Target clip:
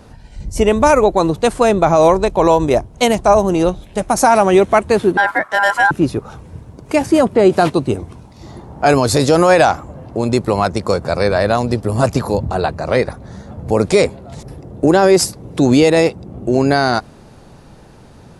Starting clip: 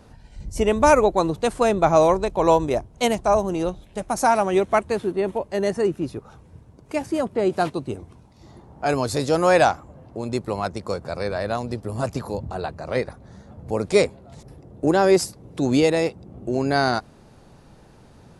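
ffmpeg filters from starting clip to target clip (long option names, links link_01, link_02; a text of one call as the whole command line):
ffmpeg -i in.wav -filter_complex "[0:a]dynaudnorm=framelen=600:gausssize=9:maxgain=11.5dB,asettb=1/sr,asplit=3[link_01][link_02][link_03];[link_01]atrim=end=5.174[link_04];[link_02]atrim=start=5.17:end=5.91,asetpts=PTS-STARTPTS,afade=type=in:duration=0.004:curve=qsin,afade=type=out:start_time=0.736:duration=0.004:curve=qsin,aeval=exprs='val(0)*sin(2*PI*1200*n/s)':channel_layout=same[link_05];[link_03]atrim=start=5.906[link_06];[link_04][link_05]acrossfade=duration=0.004:curve1=hsin:curve2=qsin[link_07];[link_07][link_06]acrossfade=duration=0.004:curve1=qsin:curve2=hsin,alimiter=level_in=8.5dB:limit=-1dB:release=50:level=0:latency=1,volume=-1dB" out.wav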